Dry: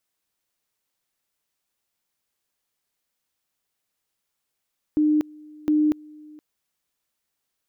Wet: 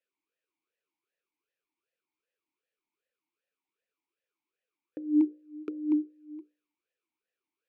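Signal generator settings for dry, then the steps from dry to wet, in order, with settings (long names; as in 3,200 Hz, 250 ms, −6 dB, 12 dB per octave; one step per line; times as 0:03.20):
tone at two levels in turn 303 Hz −16 dBFS, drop 25.5 dB, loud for 0.24 s, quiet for 0.47 s, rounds 2
mains-hum notches 60/120/180/240/300/360/420/480/540/600 Hz
in parallel at +2 dB: downward compressor, threshold −33 dBFS
on the sum: formant filter swept between two vowels e-u 2.6 Hz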